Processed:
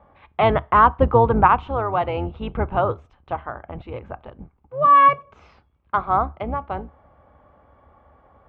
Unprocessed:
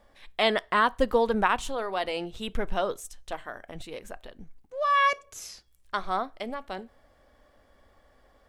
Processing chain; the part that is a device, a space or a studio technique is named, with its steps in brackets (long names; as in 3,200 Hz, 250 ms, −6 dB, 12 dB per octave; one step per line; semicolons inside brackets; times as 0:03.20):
sub-octave bass pedal (sub-octave generator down 2 octaves, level +3 dB; loudspeaker in its box 67–2,300 Hz, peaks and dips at 73 Hz +9 dB, 850 Hz +7 dB, 1,200 Hz +6 dB, 1,800 Hz −9 dB)
level +5.5 dB